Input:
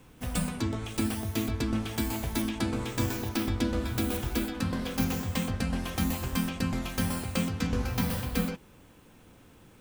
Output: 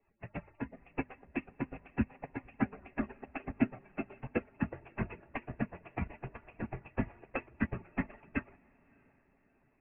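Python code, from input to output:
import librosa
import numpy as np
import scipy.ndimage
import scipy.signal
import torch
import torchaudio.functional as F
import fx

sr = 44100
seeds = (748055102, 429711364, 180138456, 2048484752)

p1 = fx.hpss_only(x, sr, part='percussive')
p2 = scipy.signal.sosfilt(scipy.signal.cheby1(6, 6, 2700.0, 'lowpass', fs=sr, output='sos'), p1)
p3 = fx.hum_notches(p2, sr, base_hz=50, count=5)
p4 = p3 + fx.echo_diffused(p3, sr, ms=621, feedback_pct=46, wet_db=-14, dry=0)
p5 = fx.upward_expand(p4, sr, threshold_db=-47.0, expansion=2.5)
y = p5 * 10.0 ** (10.5 / 20.0)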